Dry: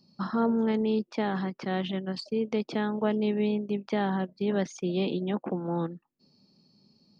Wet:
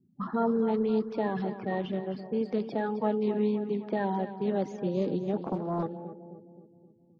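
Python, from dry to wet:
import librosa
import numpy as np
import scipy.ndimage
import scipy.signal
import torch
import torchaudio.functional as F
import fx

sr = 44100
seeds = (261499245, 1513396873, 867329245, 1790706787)

p1 = fx.spec_quant(x, sr, step_db=30)
p2 = fx.high_shelf(p1, sr, hz=2000.0, db=-11.5)
p3 = p2 + fx.echo_feedback(p2, sr, ms=262, feedback_pct=57, wet_db=-12.0, dry=0)
p4 = fx.env_lowpass(p3, sr, base_hz=330.0, full_db=-26.0)
y = fx.doppler_dist(p4, sr, depth_ms=0.53, at=(5.41, 5.83))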